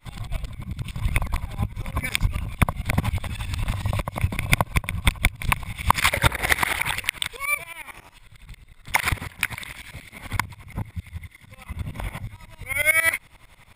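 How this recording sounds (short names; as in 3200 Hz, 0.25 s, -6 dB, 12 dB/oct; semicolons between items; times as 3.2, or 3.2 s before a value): tremolo saw up 11 Hz, depth 95%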